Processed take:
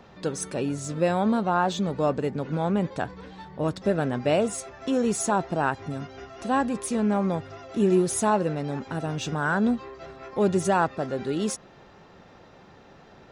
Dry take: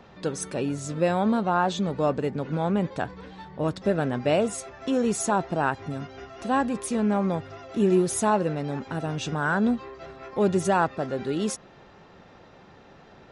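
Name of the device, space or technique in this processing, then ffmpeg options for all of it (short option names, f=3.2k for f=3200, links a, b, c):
exciter from parts: -filter_complex "[0:a]asplit=2[a][b];[b]highpass=4k,asoftclip=type=tanh:threshold=-39dB,volume=-9dB[c];[a][c]amix=inputs=2:normalize=0"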